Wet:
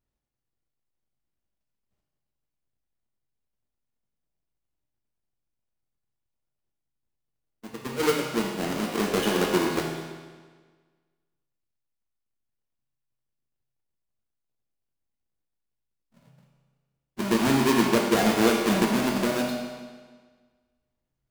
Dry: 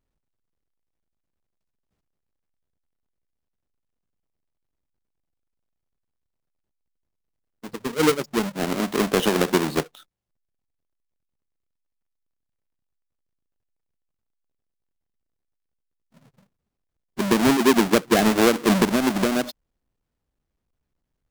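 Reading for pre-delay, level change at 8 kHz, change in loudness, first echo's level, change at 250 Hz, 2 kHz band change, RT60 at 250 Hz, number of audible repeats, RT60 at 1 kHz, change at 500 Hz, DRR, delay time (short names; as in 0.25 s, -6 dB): 6 ms, -3.5 dB, -3.5 dB, none, -3.5 dB, -3.0 dB, 1.5 s, none, 1.5 s, -3.5 dB, -1.5 dB, none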